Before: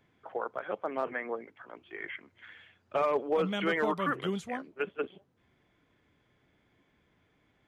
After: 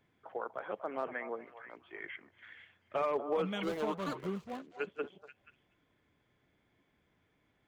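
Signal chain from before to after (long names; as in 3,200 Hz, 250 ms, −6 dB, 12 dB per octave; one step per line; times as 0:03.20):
0:03.63–0:04.69: running median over 25 samples
echo through a band-pass that steps 241 ms, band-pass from 820 Hz, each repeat 1.4 octaves, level −9 dB
level −4.5 dB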